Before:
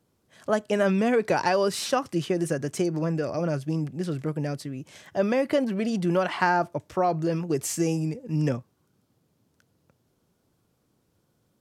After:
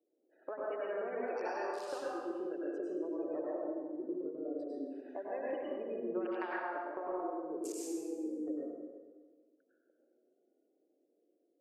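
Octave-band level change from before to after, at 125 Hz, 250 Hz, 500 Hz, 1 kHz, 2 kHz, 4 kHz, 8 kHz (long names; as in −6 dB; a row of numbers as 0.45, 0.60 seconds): below −35 dB, −13.0 dB, −11.5 dB, −14.0 dB, −14.5 dB, −22.0 dB, −17.0 dB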